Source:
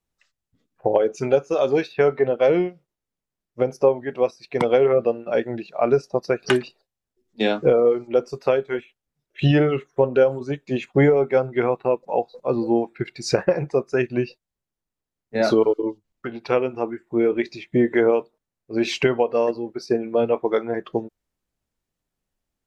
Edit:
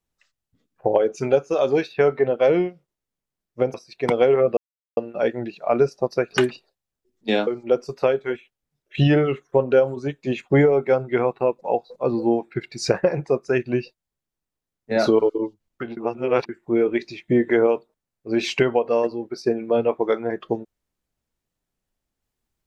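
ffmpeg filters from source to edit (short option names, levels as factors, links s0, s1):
-filter_complex "[0:a]asplit=6[s0][s1][s2][s3][s4][s5];[s0]atrim=end=3.742[s6];[s1]atrim=start=4.258:end=5.09,asetpts=PTS-STARTPTS,afade=t=out:st=0.828:d=0.004:c=hsin,apad=pad_dur=0.4[s7];[s2]atrim=start=5.09:end=7.592,asetpts=PTS-STARTPTS,afade=t=in:d=0.004:c=hsin[s8];[s3]atrim=start=7.908:end=16.412[s9];[s4]atrim=start=16.408:end=16.932,asetpts=PTS-STARTPTS,areverse[s10];[s5]atrim=start=16.928[s11];[s7][s8]concat=n=2:v=0:a=1[s12];[s6][s12]acrossfade=d=0.004:c1=hsin:c2=hsin[s13];[s13][s9]acrossfade=d=0.004:c1=hsin:c2=hsin[s14];[s14][s10]acrossfade=d=0.004:c1=hsin:c2=hsin[s15];[s15][s11]acrossfade=d=0.004:c1=hsin:c2=hsin"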